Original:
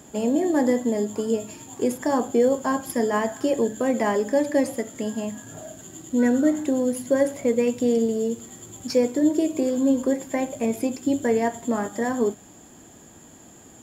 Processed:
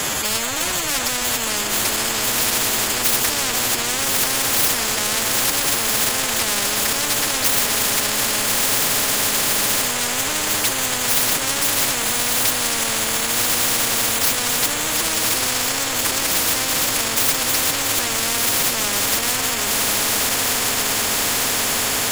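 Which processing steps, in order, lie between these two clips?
stylus tracing distortion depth 0.06 ms
high-pass filter 63 Hz 12 dB per octave
transient designer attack −9 dB, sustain +4 dB
in parallel at −7 dB: soft clipping −26 dBFS, distortion −9 dB
on the sum: tuned comb filter 190 Hz, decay 0.56 s, harmonics all, mix 30%
gain into a clipping stage and back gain 20.5 dB
phase-vocoder stretch with locked phases 1.6×
on a send: feedback delay with all-pass diffusion 1,184 ms, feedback 67%, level −8.5 dB
on the sum: boost into a limiter +25 dB
every bin compressed towards the loudest bin 10 to 1
level −1 dB

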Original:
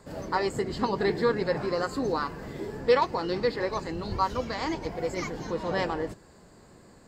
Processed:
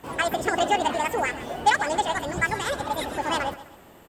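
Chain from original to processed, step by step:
on a send: repeating echo 222 ms, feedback 39%, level −16 dB
on the sum: wrong playback speed 45 rpm record played at 78 rpm
level +3 dB

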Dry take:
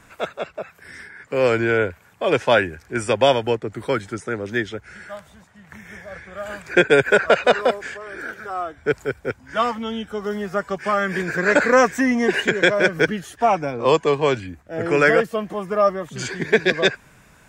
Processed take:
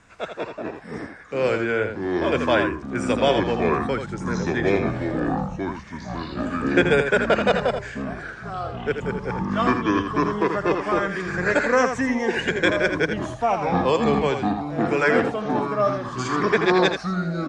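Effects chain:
delay with pitch and tempo change per echo 92 ms, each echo −6 semitones, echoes 3
low-pass filter 8,200 Hz 24 dB per octave
on a send: single-tap delay 82 ms −7.5 dB
on the sum: level −4.5 dB

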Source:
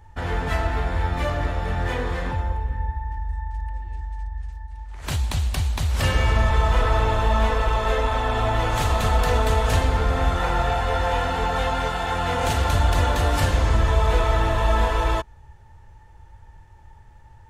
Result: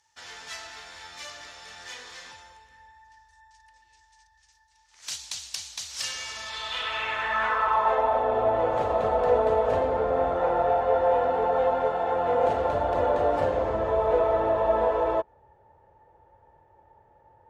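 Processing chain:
band-pass filter sweep 5,700 Hz → 550 Hz, 0:06.36–0:08.29
level +6.5 dB

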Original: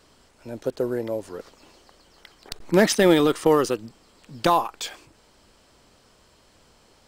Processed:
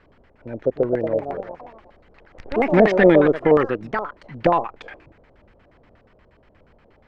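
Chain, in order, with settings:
delay with pitch and tempo change per echo 399 ms, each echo +4 semitones, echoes 3, each echo −6 dB
auto-filter low-pass square 8.4 Hz 600–2,000 Hz
low-shelf EQ 230 Hz +7.5 dB
level −1.5 dB

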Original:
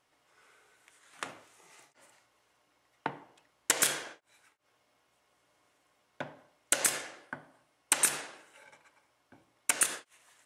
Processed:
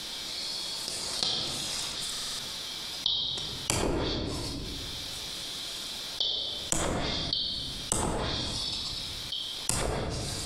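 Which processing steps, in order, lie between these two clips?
band-splitting scrambler in four parts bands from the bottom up 3412
treble cut that deepens with the level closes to 580 Hz, closed at −25.5 dBFS
convolution reverb RT60 1.1 s, pre-delay 6 ms, DRR 3.5 dB
buffer that repeats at 0:02.11, samples 2,048, times 5
envelope flattener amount 70%
level +5 dB

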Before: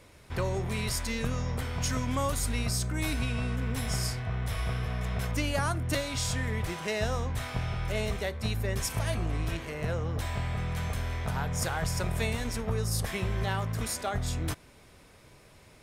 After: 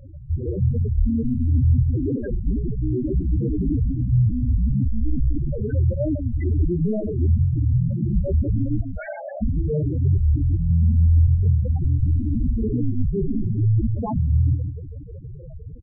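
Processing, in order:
stylus tracing distortion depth 0.04 ms
sine wavefolder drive 16 dB, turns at −16 dBFS
automatic gain control gain up to 4 dB
dynamic equaliser 990 Hz, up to −7 dB, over −32 dBFS, Q 1
0:08.82–0:09.42: linear-phase brick-wall high-pass 520 Hz
high-shelf EQ 5,500 Hz −7 dB
repeating echo 157 ms, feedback 34%, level −7 dB
spectral peaks only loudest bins 4
wow of a warped record 45 rpm, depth 160 cents

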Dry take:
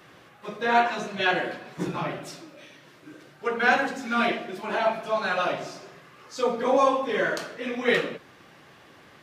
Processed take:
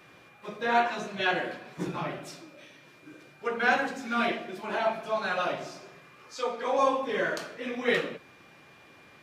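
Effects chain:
steady tone 2,400 Hz −55 dBFS
0:06.35–0:06.79: meter weighting curve A
level −3.5 dB

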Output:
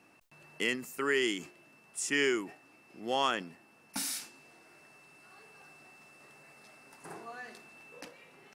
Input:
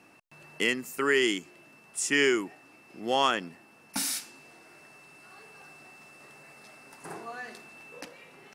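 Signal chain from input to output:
level that may fall only so fast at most 140 dB per second
level −5 dB

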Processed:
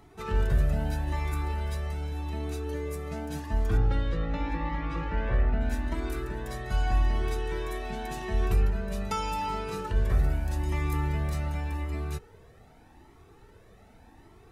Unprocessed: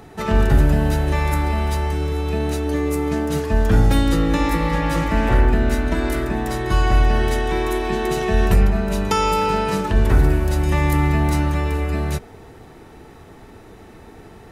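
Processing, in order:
0:03.77–0:05.61: low-pass filter 3,100 Hz 12 dB per octave
flanger whose copies keep moving one way rising 0.84 Hz
level −8 dB

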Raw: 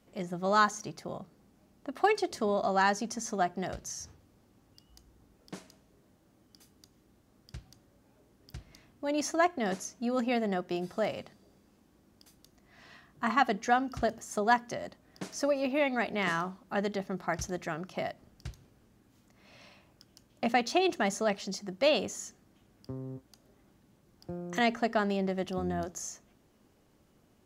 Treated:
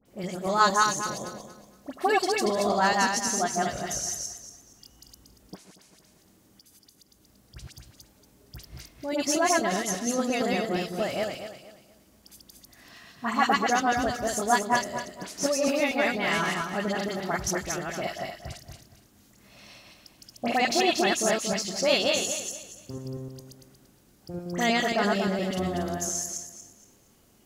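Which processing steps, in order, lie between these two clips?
feedback delay that plays each chunk backwards 117 ms, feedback 54%, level 0 dB
high-shelf EQ 3,900 Hz +11 dB
all-pass dispersion highs, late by 57 ms, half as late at 1,800 Hz
0:05.55–0:07.56: downward compressor 3 to 1, threshold −54 dBFS, peak gain reduction 13 dB

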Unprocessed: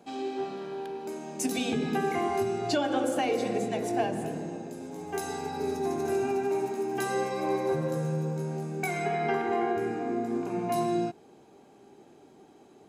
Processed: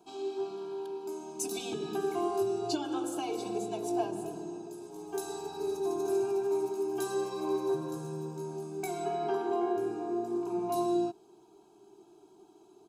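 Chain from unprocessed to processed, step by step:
phaser with its sweep stopped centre 380 Hz, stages 8
comb filter 3.1 ms, depth 63%
level −3 dB

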